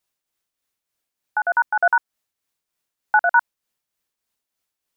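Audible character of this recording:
tremolo triangle 3.3 Hz, depth 55%

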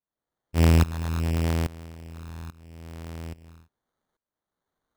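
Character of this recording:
tremolo saw up 1.2 Hz, depth 90%
phaser sweep stages 8, 0.74 Hz, lowest notch 480–4,100 Hz
aliases and images of a low sample rate 2,600 Hz, jitter 0%

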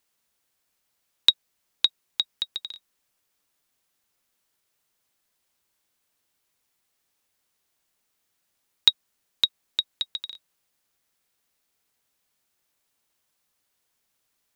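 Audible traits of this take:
background noise floor −76 dBFS
spectral slope −1.0 dB per octave

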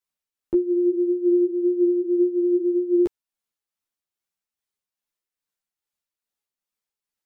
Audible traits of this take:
tremolo triangle 2.4 Hz, depth 45%
a shimmering, thickened sound

